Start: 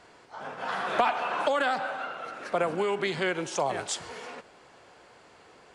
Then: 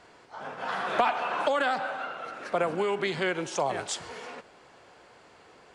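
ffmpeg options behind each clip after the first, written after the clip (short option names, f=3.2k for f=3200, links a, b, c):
-af "highshelf=f=10k:g=-4.5"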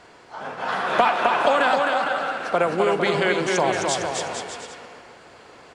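-af "aecho=1:1:260|455|601.2|710.9|793.2:0.631|0.398|0.251|0.158|0.1,volume=6dB"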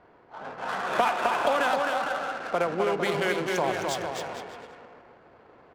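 -af "adynamicsmooth=sensitivity=5:basefreq=1.3k,volume=-5.5dB"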